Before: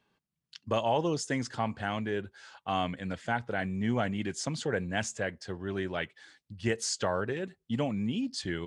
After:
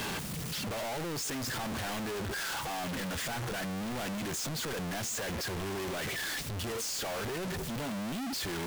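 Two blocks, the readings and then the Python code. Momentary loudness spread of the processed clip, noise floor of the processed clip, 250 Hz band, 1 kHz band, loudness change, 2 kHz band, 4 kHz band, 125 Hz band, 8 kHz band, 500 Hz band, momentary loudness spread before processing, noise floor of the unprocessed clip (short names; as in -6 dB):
2 LU, -37 dBFS, -4.0 dB, -4.0 dB, -2.0 dB, -0.5 dB, +3.0 dB, -2.5 dB, +3.0 dB, -5.0 dB, 7 LU, -85 dBFS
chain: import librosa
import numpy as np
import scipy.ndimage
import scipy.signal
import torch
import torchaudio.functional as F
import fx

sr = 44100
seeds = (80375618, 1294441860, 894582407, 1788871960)

y = np.sign(x) * np.sqrt(np.mean(np.square(x)))
y = fx.transient(y, sr, attack_db=-3, sustain_db=-7)
y = y * 10.0 ** (-2.5 / 20.0)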